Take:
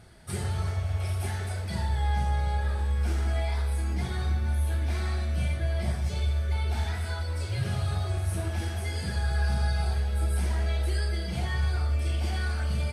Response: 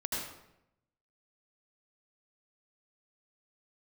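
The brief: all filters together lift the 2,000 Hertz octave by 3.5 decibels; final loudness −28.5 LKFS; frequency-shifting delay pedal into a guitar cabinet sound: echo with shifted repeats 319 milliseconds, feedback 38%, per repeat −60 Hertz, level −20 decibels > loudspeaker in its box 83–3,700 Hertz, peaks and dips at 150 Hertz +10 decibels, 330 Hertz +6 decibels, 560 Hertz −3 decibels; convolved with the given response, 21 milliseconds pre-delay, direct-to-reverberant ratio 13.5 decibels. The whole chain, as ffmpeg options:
-filter_complex "[0:a]equalizer=frequency=2000:width_type=o:gain=4.5,asplit=2[link_01][link_02];[1:a]atrim=start_sample=2205,adelay=21[link_03];[link_02][link_03]afir=irnorm=-1:irlink=0,volume=-18dB[link_04];[link_01][link_04]amix=inputs=2:normalize=0,asplit=4[link_05][link_06][link_07][link_08];[link_06]adelay=319,afreqshift=-60,volume=-20dB[link_09];[link_07]adelay=638,afreqshift=-120,volume=-28.4dB[link_10];[link_08]adelay=957,afreqshift=-180,volume=-36.8dB[link_11];[link_05][link_09][link_10][link_11]amix=inputs=4:normalize=0,highpass=83,equalizer=frequency=150:width_type=q:width=4:gain=10,equalizer=frequency=330:width_type=q:width=4:gain=6,equalizer=frequency=560:width_type=q:width=4:gain=-3,lowpass=frequency=3700:width=0.5412,lowpass=frequency=3700:width=1.3066,volume=2.5dB"

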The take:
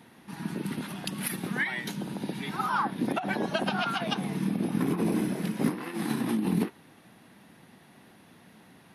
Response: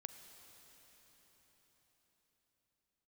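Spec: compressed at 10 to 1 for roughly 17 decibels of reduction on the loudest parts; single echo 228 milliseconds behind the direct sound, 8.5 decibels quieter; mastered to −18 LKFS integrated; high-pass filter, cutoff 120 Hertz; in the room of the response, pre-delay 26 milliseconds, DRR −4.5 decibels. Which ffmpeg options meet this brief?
-filter_complex "[0:a]highpass=120,acompressor=threshold=-41dB:ratio=10,aecho=1:1:228:0.376,asplit=2[link_01][link_02];[1:a]atrim=start_sample=2205,adelay=26[link_03];[link_02][link_03]afir=irnorm=-1:irlink=0,volume=9.5dB[link_04];[link_01][link_04]amix=inputs=2:normalize=0,volume=21dB"

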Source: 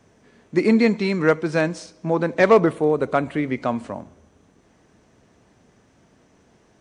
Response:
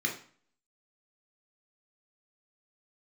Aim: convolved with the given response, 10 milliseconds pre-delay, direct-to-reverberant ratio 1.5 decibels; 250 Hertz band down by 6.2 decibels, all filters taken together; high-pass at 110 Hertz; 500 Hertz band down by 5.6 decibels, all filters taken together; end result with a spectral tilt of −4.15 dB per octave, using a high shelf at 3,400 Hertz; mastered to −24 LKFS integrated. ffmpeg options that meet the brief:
-filter_complex "[0:a]highpass=110,equalizer=frequency=250:width_type=o:gain=-6.5,equalizer=frequency=500:width_type=o:gain=-5,highshelf=frequency=3400:gain=4.5,asplit=2[link_01][link_02];[1:a]atrim=start_sample=2205,adelay=10[link_03];[link_02][link_03]afir=irnorm=-1:irlink=0,volume=-8dB[link_04];[link_01][link_04]amix=inputs=2:normalize=0,volume=-2dB"

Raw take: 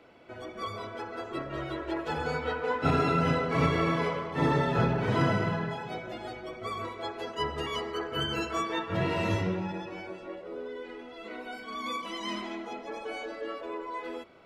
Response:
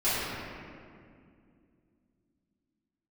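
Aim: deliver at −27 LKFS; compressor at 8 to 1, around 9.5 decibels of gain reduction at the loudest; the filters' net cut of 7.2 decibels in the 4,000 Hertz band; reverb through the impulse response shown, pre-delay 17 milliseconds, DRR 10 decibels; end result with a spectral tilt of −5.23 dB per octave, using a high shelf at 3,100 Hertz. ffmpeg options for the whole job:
-filter_complex "[0:a]highshelf=frequency=3100:gain=-4,equalizer=frequency=4000:width_type=o:gain=-7.5,acompressor=threshold=-31dB:ratio=8,asplit=2[link_01][link_02];[1:a]atrim=start_sample=2205,adelay=17[link_03];[link_02][link_03]afir=irnorm=-1:irlink=0,volume=-23.5dB[link_04];[link_01][link_04]amix=inputs=2:normalize=0,volume=9.5dB"

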